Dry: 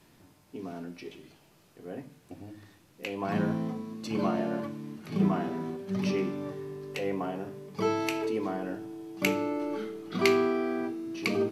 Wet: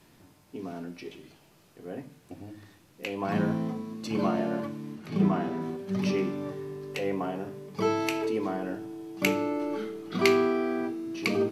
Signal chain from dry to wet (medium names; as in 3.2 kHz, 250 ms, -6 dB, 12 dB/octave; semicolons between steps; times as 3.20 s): 4.95–5.62 s: treble shelf 7.9 kHz -6 dB; trim +1.5 dB